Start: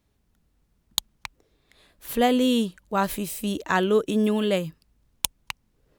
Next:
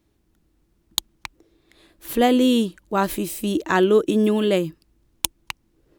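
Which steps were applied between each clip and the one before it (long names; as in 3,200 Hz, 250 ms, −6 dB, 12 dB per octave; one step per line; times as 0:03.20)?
parametric band 330 Hz +15 dB 0.28 octaves
level +2 dB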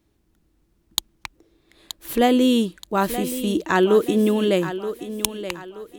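feedback echo with a high-pass in the loop 926 ms, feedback 38%, high-pass 170 Hz, level −11 dB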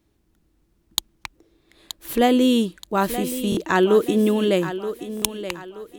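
buffer that repeats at 0:03.50/0:05.15, samples 1,024, times 2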